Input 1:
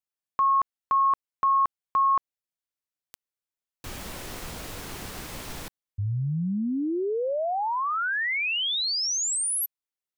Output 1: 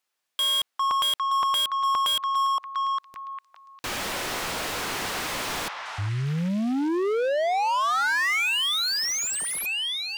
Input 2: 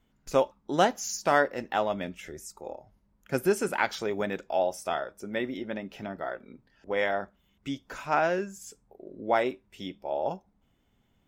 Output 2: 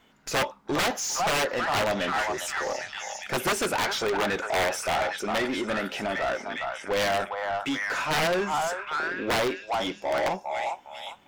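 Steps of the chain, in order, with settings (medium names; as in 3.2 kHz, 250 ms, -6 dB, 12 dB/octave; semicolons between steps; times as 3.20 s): repeats whose band climbs or falls 403 ms, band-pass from 990 Hz, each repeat 0.7 oct, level -6 dB; integer overflow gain 19.5 dB; overdrive pedal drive 23 dB, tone 4.5 kHz, clips at -19.5 dBFS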